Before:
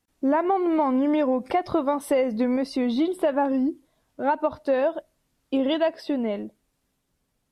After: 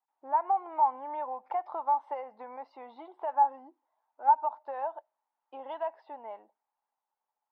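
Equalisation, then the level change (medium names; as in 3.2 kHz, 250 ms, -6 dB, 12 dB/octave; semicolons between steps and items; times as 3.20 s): ladder band-pass 910 Hz, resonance 80%; distance through air 75 m; 0.0 dB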